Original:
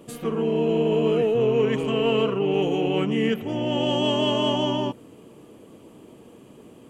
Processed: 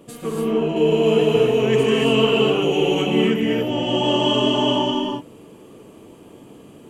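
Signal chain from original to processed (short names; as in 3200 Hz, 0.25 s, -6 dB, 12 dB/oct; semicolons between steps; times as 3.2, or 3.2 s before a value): 0.76–3.02 high shelf 3100 Hz +10.5 dB; non-linear reverb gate 0.31 s rising, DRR -2 dB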